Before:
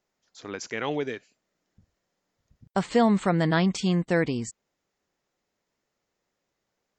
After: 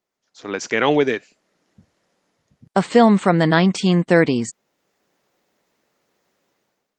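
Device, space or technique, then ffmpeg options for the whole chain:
video call: -filter_complex "[0:a]asplit=3[link_01][link_02][link_03];[link_01]afade=type=out:start_time=2.91:duration=0.02[link_04];[link_02]bandreject=frequency=50:width_type=h:width=6,bandreject=frequency=100:width_type=h:width=6,afade=type=in:start_time=2.91:duration=0.02,afade=type=out:start_time=3.9:duration=0.02[link_05];[link_03]afade=type=in:start_time=3.9:duration=0.02[link_06];[link_04][link_05][link_06]amix=inputs=3:normalize=0,highpass=150,dynaudnorm=framelen=190:gausssize=5:maxgain=14dB" -ar 48000 -c:a libopus -b:a 32k

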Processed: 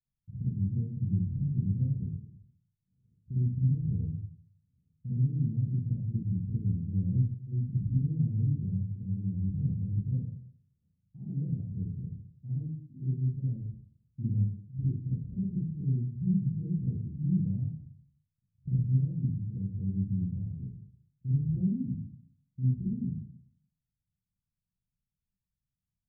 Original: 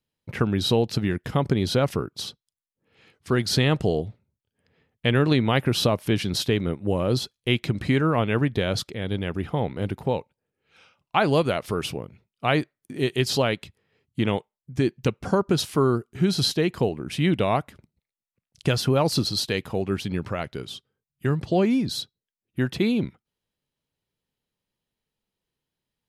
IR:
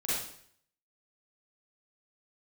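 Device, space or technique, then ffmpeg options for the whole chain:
club heard from the street: -filter_complex "[0:a]asettb=1/sr,asplit=3[link_01][link_02][link_03];[link_01]atrim=end=8.514[link_04];[link_02]atrim=start=8.51:end=9.34,asetpts=PTS-STARTPTS,afade=type=in:duration=0.004:curve=qsin,afade=type=out:start_time=0.826:duration=0.004:curve=qsin,highpass=92[link_05];[link_03]atrim=start=9.336[link_06];[link_04][link_05]acrossfade=duration=0.004:curve1=hsin:curve2=qsin[link_07];[link_07][link_06]acrossfade=duration=0.004:curve1=qsin:curve2=hsin,alimiter=limit=-12dB:level=0:latency=1:release=446,lowpass=frequency=160:width=0.5412,lowpass=frequency=160:width=1.3066[link_08];[1:a]atrim=start_sample=2205[link_09];[link_08][link_09]afir=irnorm=-1:irlink=0,volume=-4.5dB"

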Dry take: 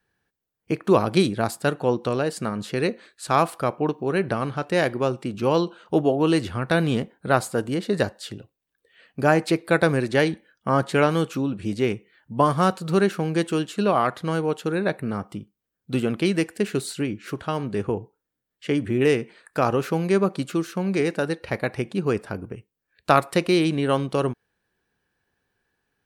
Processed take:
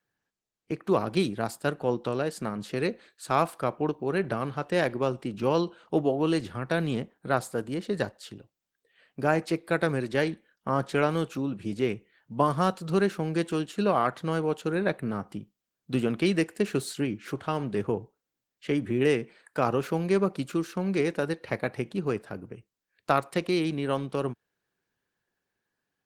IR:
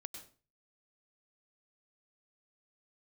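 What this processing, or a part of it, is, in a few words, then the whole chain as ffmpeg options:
video call: -af "highpass=frequency=100:width=0.5412,highpass=frequency=100:width=1.3066,dynaudnorm=framelen=160:gausssize=17:maxgain=5dB,volume=-7dB" -ar 48000 -c:a libopus -b:a 16k

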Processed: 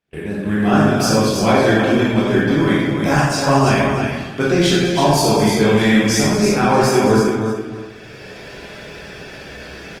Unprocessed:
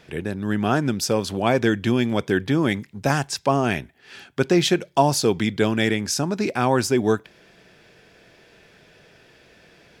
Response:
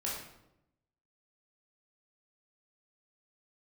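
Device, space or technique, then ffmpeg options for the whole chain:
speakerphone in a meeting room: -filter_complex "[0:a]aecho=1:1:58|63|73|208|323|626:0.2|0.266|0.316|0.282|0.531|0.106[link_01];[1:a]atrim=start_sample=2205[link_02];[link_01][link_02]afir=irnorm=-1:irlink=0,dynaudnorm=framelen=360:gausssize=3:maxgain=14dB,agate=range=-25dB:threshold=-37dB:ratio=16:detection=peak,volume=-1dB" -ar 48000 -c:a libopus -b:a 24k

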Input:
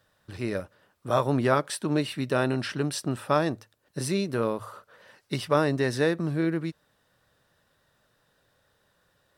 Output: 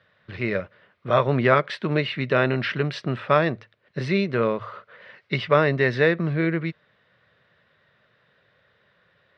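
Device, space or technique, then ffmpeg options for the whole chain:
guitar cabinet: -af "highpass=100,equalizer=frequency=290:width_type=q:width=4:gain=-9,equalizer=frequency=840:width_type=q:width=4:gain=-7,equalizer=frequency=2100:width_type=q:width=4:gain=8,lowpass=frequency=3700:width=0.5412,lowpass=frequency=3700:width=1.3066,volume=6dB"

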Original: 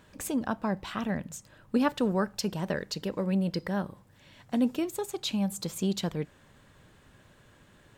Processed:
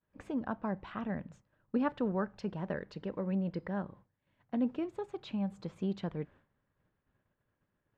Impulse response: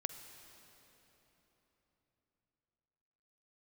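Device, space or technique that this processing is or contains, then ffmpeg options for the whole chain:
hearing-loss simulation: -af "lowpass=2000,agate=range=-33dB:threshold=-47dB:ratio=3:detection=peak,volume=-5.5dB"

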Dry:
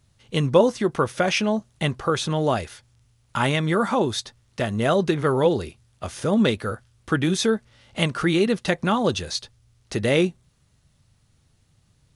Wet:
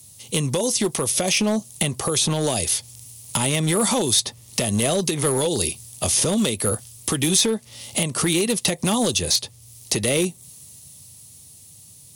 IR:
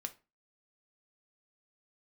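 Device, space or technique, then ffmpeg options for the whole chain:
FM broadcast chain: -filter_complex "[0:a]highpass=frequency=80:width=0.5412,highpass=frequency=80:width=1.3066,equalizer=frequency=1500:width_type=o:width=0.54:gain=-13.5,dynaudnorm=framelen=300:gausssize=13:maxgain=11.5dB,acrossover=split=700|2500|5700[link_01][link_02][link_03][link_04];[link_01]acompressor=threshold=-26dB:ratio=4[link_05];[link_02]acompressor=threshold=-37dB:ratio=4[link_06];[link_03]acompressor=threshold=-42dB:ratio=4[link_07];[link_04]acompressor=threshold=-52dB:ratio=4[link_08];[link_05][link_06][link_07][link_08]amix=inputs=4:normalize=0,aemphasis=mode=production:type=50fm,alimiter=limit=-19dB:level=0:latency=1:release=167,asoftclip=type=hard:threshold=-23dB,lowpass=frequency=15000:width=0.5412,lowpass=frequency=15000:width=1.3066,aemphasis=mode=production:type=50fm,volume=8dB"

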